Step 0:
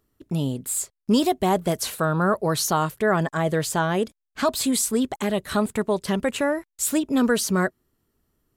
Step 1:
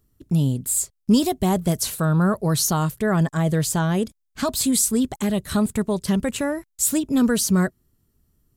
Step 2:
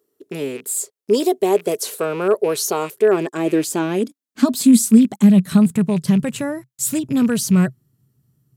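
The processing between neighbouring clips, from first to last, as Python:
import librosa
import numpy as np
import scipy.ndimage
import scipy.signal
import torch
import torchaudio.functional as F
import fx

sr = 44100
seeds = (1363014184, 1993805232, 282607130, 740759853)

y1 = fx.bass_treble(x, sr, bass_db=12, treble_db=8)
y1 = y1 * librosa.db_to_amplitude(-3.5)
y2 = fx.rattle_buzz(y1, sr, strikes_db=-28.0, level_db=-26.0)
y2 = fx.filter_sweep_highpass(y2, sr, from_hz=420.0, to_hz=130.0, start_s=2.84, end_s=6.46, q=6.1)
y2 = y2 * librosa.db_to_amplitude(-1.0)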